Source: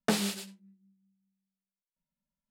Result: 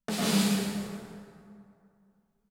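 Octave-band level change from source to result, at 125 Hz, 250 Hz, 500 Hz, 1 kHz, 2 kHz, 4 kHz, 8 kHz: +8.5 dB, +7.0 dB, +2.0 dB, +2.5 dB, +2.0 dB, +4.0 dB, +4.0 dB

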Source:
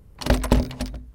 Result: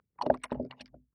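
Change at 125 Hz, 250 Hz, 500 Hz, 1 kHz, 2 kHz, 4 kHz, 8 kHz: -22.5 dB, -13.5 dB, -4.0 dB, -3.5 dB, -14.0 dB, -17.0 dB, -18.0 dB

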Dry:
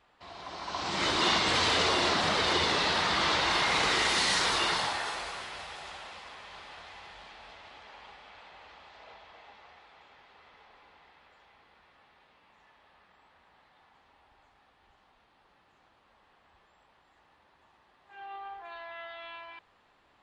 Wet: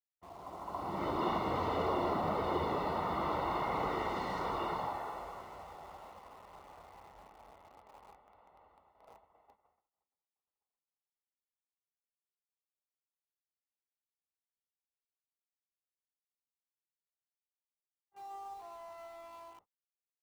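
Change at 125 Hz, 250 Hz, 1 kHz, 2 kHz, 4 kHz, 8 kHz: -2.5 dB, -2.5 dB, -4.5 dB, -17.0 dB, -23.0 dB, -25.5 dB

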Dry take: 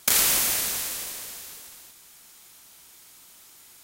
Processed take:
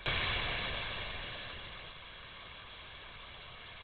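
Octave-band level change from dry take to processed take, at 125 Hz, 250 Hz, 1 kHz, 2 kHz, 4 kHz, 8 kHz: +4.5 dB, -5.5 dB, -4.0 dB, -3.0 dB, -7.5 dB, under -40 dB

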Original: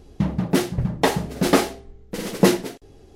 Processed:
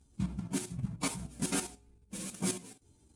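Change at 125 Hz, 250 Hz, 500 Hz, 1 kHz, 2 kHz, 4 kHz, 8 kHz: -13.5 dB, -15.0 dB, -22.5 dB, -19.0 dB, -16.0 dB, -14.0 dB, -5.0 dB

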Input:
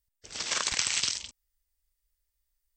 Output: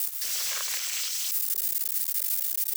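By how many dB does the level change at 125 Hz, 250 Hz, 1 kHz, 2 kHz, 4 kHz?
under -40 dB, under -25 dB, -5.0 dB, -3.0 dB, -1.0 dB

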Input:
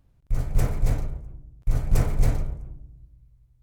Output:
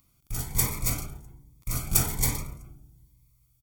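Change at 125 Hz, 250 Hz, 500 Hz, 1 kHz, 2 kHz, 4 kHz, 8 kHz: -6.0 dB, -3.0 dB, -6.0 dB, +1.0 dB, +4.0 dB, +10.5 dB, +16.0 dB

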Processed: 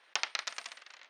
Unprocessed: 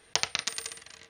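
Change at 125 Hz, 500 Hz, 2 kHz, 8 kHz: under -25 dB, -8.5 dB, -2.5 dB, -9.5 dB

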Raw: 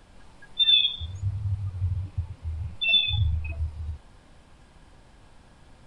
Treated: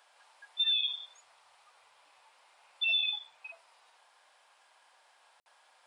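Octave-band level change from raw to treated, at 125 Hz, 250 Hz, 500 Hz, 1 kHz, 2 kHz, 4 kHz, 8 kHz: under -40 dB, under -35 dB, -10.5 dB, -4.5 dB, -6.0 dB, -8.5 dB, no reading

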